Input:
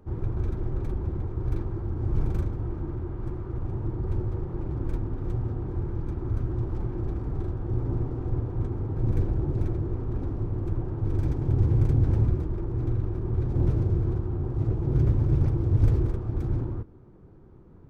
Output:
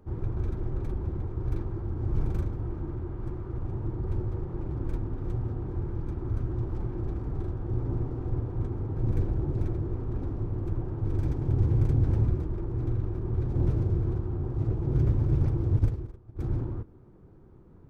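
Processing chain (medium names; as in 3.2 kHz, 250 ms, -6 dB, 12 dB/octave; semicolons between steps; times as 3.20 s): 15.79–16.39 s: upward expansion 2.5:1, over -29 dBFS; trim -2 dB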